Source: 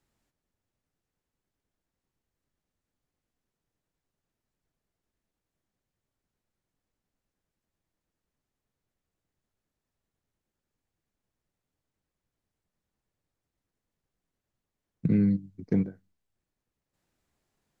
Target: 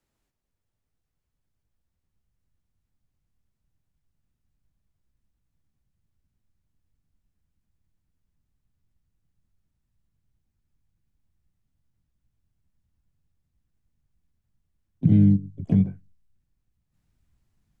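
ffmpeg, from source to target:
ffmpeg -i in.wav -filter_complex "[0:a]asplit=2[link_01][link_02];[link_02]asetrate=66075,aresample=44100,atempo=0.66742,volume=-5dB[link_03];[link_01][link_03]amix=inputs=2:normalize=0,acrossover=split=250|3000[link_04][link_05][link_06];[link_05]acompressor=threshold=-32dB:ratio=1.5[link_07];[link_04][link_07][link_06]amix=inputs=3:normalize=0,asubboost=boost=7.5:cutoff=160,volume=-2.5dB" out.wav

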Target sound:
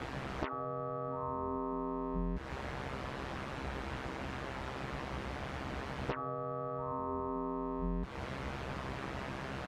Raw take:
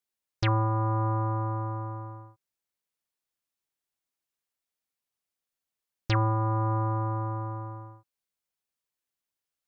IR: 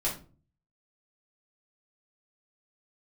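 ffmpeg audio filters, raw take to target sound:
-filter_complex "[0:a]aeval=exprs='val(0)+0.5*0.0133*sgn(val(0))':channel_layout=same,aeval=exprs='val(0)*sin(2*PI*66*n/s)':channel_layout=same,afftfilt=real='re*lt(hypot(re,im),0.0891)':imag='im*lt(hypot(re,im),0.0891)':win_size=1024:overlap=0.75,lowpass=1500,lowshelf=frequency=87:gain=-7,acompressor=threshold=-54dB:ratio=8,equalizer=frequency=63:width=0.38:gain=14.5,asplit=2[link_01][link_02];[link_02]adelay=15,volume=-5dB[link_03];[link_01][link_03]amix=inputs=2:normalize=0,volume=15.5dB"

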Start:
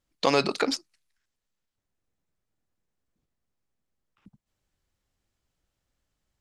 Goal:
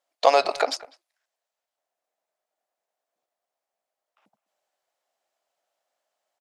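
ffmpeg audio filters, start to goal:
ffmpeg -i in.wav -filter_complex "[0:a]highpass=frequency=660:width_type=q:width=4.9,asplit=2[link_01][link_02];[link_02]adelay=200,highpass=300,lowpass=3400,asoftclip=type=hard:threshold=-13dB,volume=-20dB[link_03];[link_01][link_03]amix=inputs=2:normalize=0" out.wav

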